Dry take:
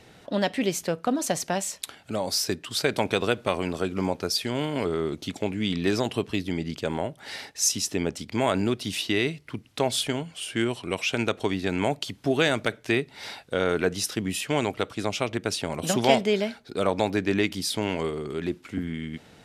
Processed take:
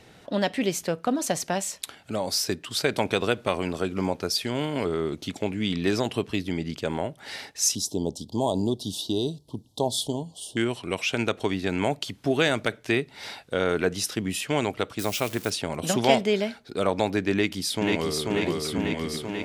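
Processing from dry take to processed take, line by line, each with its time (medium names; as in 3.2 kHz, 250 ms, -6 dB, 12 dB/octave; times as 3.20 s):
7.75–10.57 s: elliptic band-stop 940–3500 Hz
14.99–15.50 s: zero-crossing glitches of -27 dBFS
17.32–18.30 s: echo throw 490 ms, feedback 75%, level -2 dB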